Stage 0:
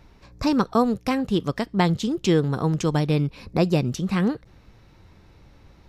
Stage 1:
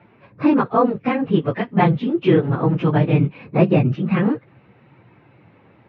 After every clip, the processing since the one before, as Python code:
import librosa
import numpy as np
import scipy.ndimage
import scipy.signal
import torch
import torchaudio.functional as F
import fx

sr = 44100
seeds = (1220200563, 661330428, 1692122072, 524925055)

y = fx.phase_scramble(x, sr, seeds[0], window_ms=50)
y = scipy.signal.sosfilt(scipy.signal.ellip(3, 1.0, 50, [120.0, 2600.0], 'bandpass', fs=sr, output='sos'), y)
y = F.gain(torch.from_numpy(y), 5.0).numpy()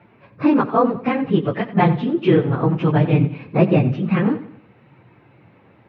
y = fx.echo_feedback(x, sr, ms=90, feedback_pct=41, wet_db=-14.5)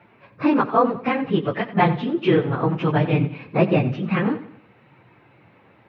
y = fx.low_shelf(x, sr, hz=490.0, db=-6.5)
y = F.gain(torch.from_numpy(y), 1.5).numpy()